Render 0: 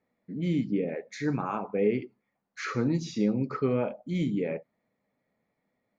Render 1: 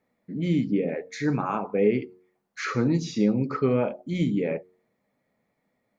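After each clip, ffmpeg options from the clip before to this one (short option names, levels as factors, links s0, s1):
-af "bandreject=f=91.24:t=h:w=4,bandreject=f=182.48:t=h:w=4,bandreject=f=273.72:t=h:w=4,bandreject=f=364.96:t=h:w=4,bandreject=f=456.2:t=h:w=4,volume=1.58"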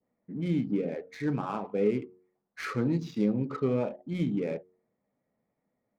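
-af "adynamicequalizer=threshold=0.00562:dfrequency=1700:dqfactor=0.98:tfrequency=1700:tqfactor=0.98:attack=5:release=100:ratio=0.375:range=2.5:mode=cutabove:tftype=bell,adynamicsmooth=sensitivity=8:basefreq=1700,volume=0.596"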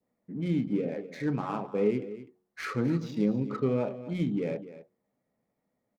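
-af "aecho=1:1:251:0.188"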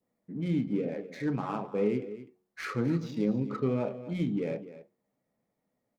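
-af "flanger=delay=5.6:depth=4.4:regen=-83:speed=0.37:shape=triangular,volume=1.5"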